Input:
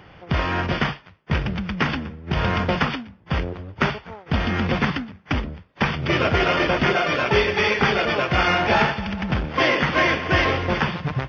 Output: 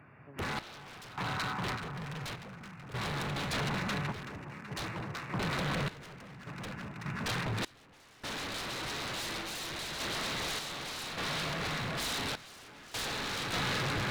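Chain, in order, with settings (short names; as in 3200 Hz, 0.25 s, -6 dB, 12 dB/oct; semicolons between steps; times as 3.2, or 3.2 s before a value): Wiener smoothing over 9 samples; HPF 150 Hz 24 dB/oct; bell 640 Hz -12 dB 2.5 oct; varispeed -20%; on a send at -21 dB: reverb RT60 2.0 s, pre-delay 0.115 s; on the sum: spectral gain 0.57–1.04, 690–1700 Hz +8 dB; echo with dull and thin repeats by turns 0.189 s, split 1000 Hz, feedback 84%, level -3.5 dB; wavefolder -28 dBFS; random-step tremolo 1.7 Hz, depth 95%; dynamic EQ 3900 Hz, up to +6 dB, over -57 dBFS, Q 4.4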